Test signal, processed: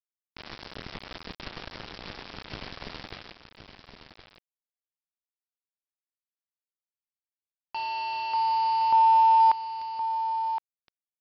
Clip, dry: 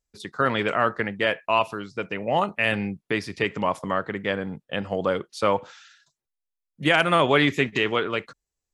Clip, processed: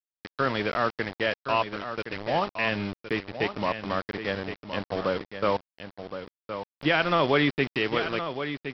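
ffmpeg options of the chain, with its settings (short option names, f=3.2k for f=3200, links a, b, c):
-af "equalizer=f=280:w=0.62:g=2.5,aresample=11025,aeval=exprs='val(0)*gte(abs(val(0)),0.0473)':c=same,aresample=44100,aecho=1:1:1067:0.335,volume=-4.5dB"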